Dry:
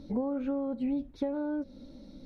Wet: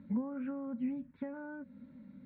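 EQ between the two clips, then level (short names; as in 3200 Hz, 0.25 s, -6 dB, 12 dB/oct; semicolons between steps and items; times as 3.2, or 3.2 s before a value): air absorption 180 m; speaker cabinet 200–2100 Hz, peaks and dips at 320 Hz -10 dB, 450 Hz -5 dB, 730 Hz -8 dB, 1200 Hz -8 dB; band shelf 500 Hz -12 dB; +4.5 dB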